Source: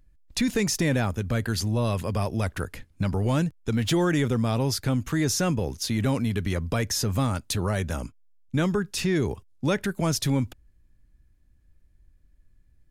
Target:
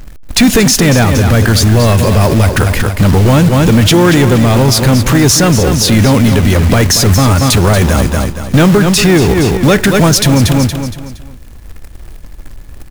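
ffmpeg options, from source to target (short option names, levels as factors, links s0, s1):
-filter_complex "[0:a]aeval=exprs='0.2*(cos(1*acos(clip(val(0)/0.2,-1,1)))-cos(1*PI/2))+0.00224*(cos(4*acos(clip(val(0)/0.2,-1,1)))-cos(4*PI/2))':c=same,asplit=2[s0][s1];[s1]asetrate=35002,aresample=44100,atempo=1.25992,volume=0.178[s2];[s0][s2]amix=inputs=2:normalize=0,asplit=2[s3][s4];[s4]asoftclip=type=hard:threshold=0.0631,volume=0.335[s5];[s3][s5]amix=inputs=2:normalize=0,acrusher=bits=3:mode=log:mix=0:aa=0.000001,asoftclip=type=tanh:threshold=0.119,aecho=1:1:233|466|699|932:0.316|0.114|0.041|0.0148,alimiter=level_in=20:limit=0.891:release=50:level=0:latency=1,volume=0.891"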